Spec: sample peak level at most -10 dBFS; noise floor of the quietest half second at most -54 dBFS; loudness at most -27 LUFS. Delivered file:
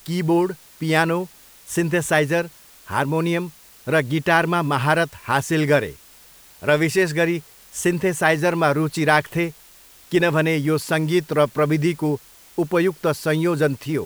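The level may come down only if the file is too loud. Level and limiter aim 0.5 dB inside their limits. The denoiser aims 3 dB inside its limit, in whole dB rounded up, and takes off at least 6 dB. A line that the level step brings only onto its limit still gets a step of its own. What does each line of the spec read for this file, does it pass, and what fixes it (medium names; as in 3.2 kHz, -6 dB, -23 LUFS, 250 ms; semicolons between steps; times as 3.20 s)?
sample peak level -3.0 dBFS: fail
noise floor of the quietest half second -48 dBFS: fail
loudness -20.5 LUFS: fail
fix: trim -7 dB; peak limiter -10.5 dBFS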